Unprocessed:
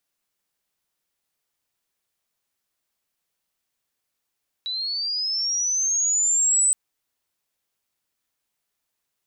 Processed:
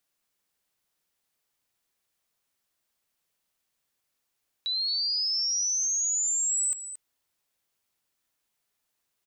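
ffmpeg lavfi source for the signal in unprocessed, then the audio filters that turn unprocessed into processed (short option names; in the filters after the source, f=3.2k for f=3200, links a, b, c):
-f lavfi -i "aevalsrc='pow(10,(-25.5+10*t/2.07)/20)*sin(2*PI*(3900*t+4200*t*t/(2*2.07)))':d=2.07:s=44100"
-filter_complex "[0:a]acrossover=split=2900[a][b];[b]acompressor=threshold=-27dB:ratio=4:attack=1:release=60[c];[a][c]amix=inputs=2:normalize=0,asplit=2[d][e];[e]aecho=0:1:225:0.251[f];[d][f]amix=inputs=2:normalize=0"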